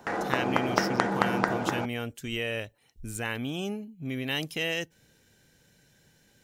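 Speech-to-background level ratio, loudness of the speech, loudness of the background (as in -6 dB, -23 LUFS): -4.5 dB, -33.0 LUFS, -28.5 LUFS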